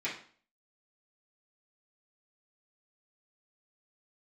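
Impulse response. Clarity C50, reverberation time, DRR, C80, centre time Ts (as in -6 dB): 6.5 dB, 0.45 s, -10.0 dB, 11.5 dB, 28 ms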